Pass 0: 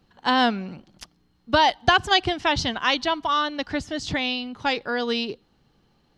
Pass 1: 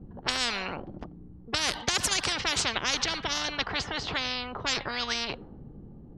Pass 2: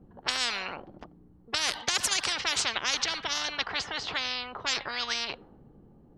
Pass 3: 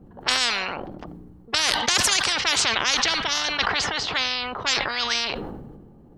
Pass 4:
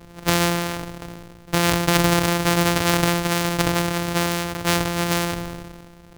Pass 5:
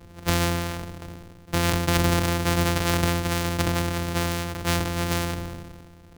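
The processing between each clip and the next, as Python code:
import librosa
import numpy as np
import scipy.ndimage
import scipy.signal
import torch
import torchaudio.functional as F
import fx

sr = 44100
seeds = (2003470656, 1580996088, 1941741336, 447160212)

y1 = fx.env_lowpass(x, sr, base_hz=330.0, full_db=-17.5)
y1 = fx.spectral_comp(y1, sr, ratio=10.0)
y1 = F.gain(torch.from_numpy(y1), -4.5).numpy()
y2 = fx.low_shelf(y1, sr, hz=380.0, db=-11.0)
y3 = fx.sustainer(y2, sr, db_per_s=34.0)
y3 = F.gain(torch.from_numpy(y3), 6.0).numpy()
y4 = np.r_[np.sort(y3[:len(y3) // 256 * 256].reshape(-1, 256), axis=1).ravel(), y3[len(y3) // 256 * 256:]]
y4 = F.gain(torch.from_numpy(y4), 3.0).numpy()
y5 = fx.octave_divider(y4, sr, octaves=1, level_db=1.0)
y5 = F.gain(torch.from_numpy(y5), -5.0).numpy()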